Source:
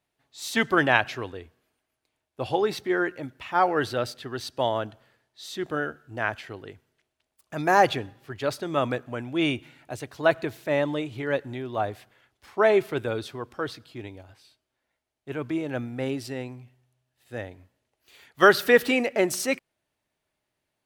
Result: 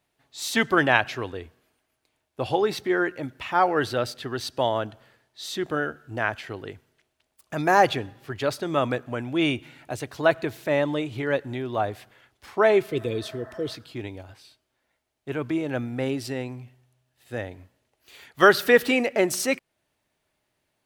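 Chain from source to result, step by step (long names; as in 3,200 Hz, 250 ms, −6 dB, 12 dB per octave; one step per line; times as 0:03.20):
healed spectral selection 0:12.91–0:13.72, 540–2,000 Hz before
in parallel at −2 dB: downward compressor, threshold −35 dBFS, peak gain reduction 22 dB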